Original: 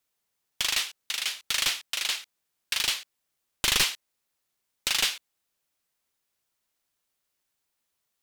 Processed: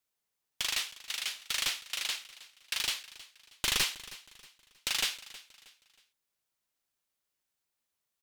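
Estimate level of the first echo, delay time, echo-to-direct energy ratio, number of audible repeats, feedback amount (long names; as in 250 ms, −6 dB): −18.0 dB, 317 ms, −17.5 dB, 2, 36%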